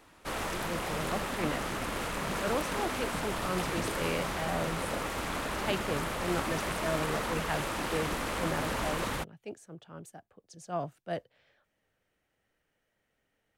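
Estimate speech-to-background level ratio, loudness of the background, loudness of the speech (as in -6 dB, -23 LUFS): -3.5 dB, -34.0 LUFS, -37.5 LUFS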